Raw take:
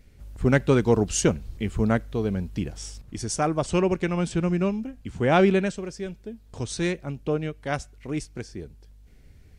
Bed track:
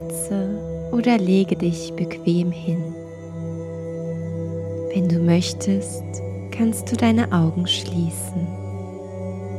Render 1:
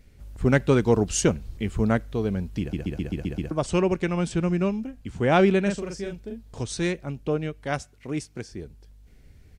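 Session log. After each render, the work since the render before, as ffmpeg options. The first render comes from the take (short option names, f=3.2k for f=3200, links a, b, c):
-filter_complex "[0:a]asplit=3[a][b][c];[a]afade=t=out:st=5.65:d=0.02[d];[b]asplit=2[e][f];[f]adelay=40,volume=-3dB[g];[e][g]amix=inputs=2:normalize=0,afade=t=in:st=5.65:d=0.02,afade=t=out:st=6.62:d=0.02[h];[c]afade=t=in:st=6.62:d=0.02[i];[d][h][i]amix=inputs=3:normalize=0,asettb=1/sr,asplit=3[j][k][l];[j]atrim=end=7.784[m];[k]atrim=start=7.78:end=8.52,asetpts=PTS-STARTPTS,afade=t=in:d=0.004:c=qsin,afade=t=out:st=0.736:d=0.004:c=qsin,highpass=82[n];[l]atrim=start=8.516[o];[m][n]acrossfade=d=0.004:c1=hsin:c2=qsin[p];[p][o]acrossfade=d=0.004:c1=qsin:c2=hsin,asplit=8[q][r][s][t][u][v][w][x];[q]atrim=end=2.732[y];[r]atrim=start=2.598:end=2.732[z];[s]atrim=start=2.598:end=2.732[aa];[t]atrim=start=2.598:end=2.732[ab];[u]atrim=start=2.598:end=2.732[ac];[v]atrim=start=2.598:end=2.732[ad];[w]atrim=start=2.598:end=2.732[ae];[x]atrim=start=3.508[af];[y][z]acrossfade=d=0.004:c1=hsin:c2=hsin[ag];[ag][aa]acrossfade=d=0.004:c1=hsin:c2=hsin[ah];[ah][ab]acrossfade=d=0.004:c1=hsin:c2=hsin[ai];[ai][ac]acrossfade=d=0.004:c1=hsin:c2=hsin[aj];[aj][ad]acrossfade=d=0.004:c1=hsin:c2=hsin[ak];[ak][ae]acrossfade=d=0.004:c1=hsin:c2=hsin[al];[al][af]acrossfade=d=0.004:c1=hsin:c2=hsin"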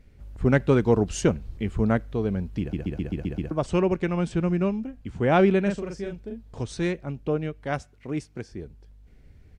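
-af "highshelf=f=4k:g=-10.5"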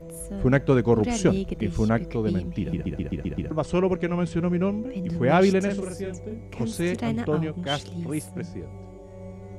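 -filter_complex "[1:a]volume=-11dB[a];[0:a][a]amix=inputs=2:normalize=0"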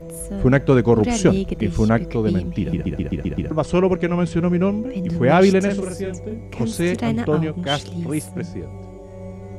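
-af "volume=5.5dB,alimiter=limit=-3dB:level=0:latency=1"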